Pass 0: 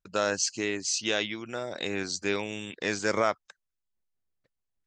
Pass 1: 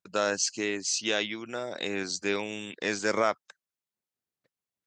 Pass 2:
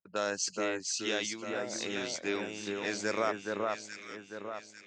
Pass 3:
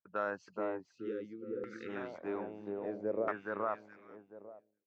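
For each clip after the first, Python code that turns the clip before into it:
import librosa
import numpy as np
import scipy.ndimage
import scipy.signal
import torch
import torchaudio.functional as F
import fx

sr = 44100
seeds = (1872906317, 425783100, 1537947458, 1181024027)

y1 = scipy.signal.sosfilt(scipy.signal.butter(2, 140.0, 'highpass', fs=sr, output='sos'), x)
y2 = fx.env_lowpass(y1, sr, base_hz=1400.0, full_db=-27.0)
y2 = fx.echo_alternate(y2, sr, ms=424, hz=1700.0, feedback_pct=65, wet_db=-2.0)
y2 = F.gain(torch.from_numpy(y2), -5.5).numpy()
y3 = fx.fade_out_tail(y2, sr, length_s=1.06)
y3 = fx.spec_erase(y3, sr, start_s=0.96, length_s=0.93, low_hz=530.0, high_hz=1200.0)
y3 = fx.filter_lfo_lowpass(y3, sr, shape='saw_down', hz=0.61, low_hz=480.0, high_hz=1600.0, q=1.8)
y3 = F.gain(torch.from_numpy(y3), -5.0).numpy()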